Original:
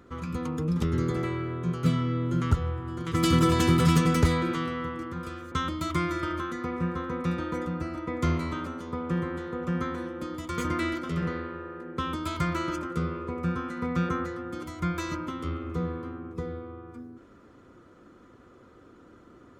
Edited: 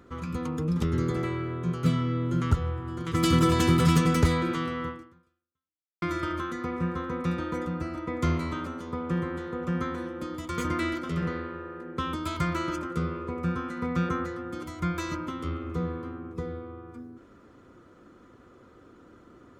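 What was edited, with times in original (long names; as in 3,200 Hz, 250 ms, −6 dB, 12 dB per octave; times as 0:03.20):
0:04.89–0:06.02: fade out exponential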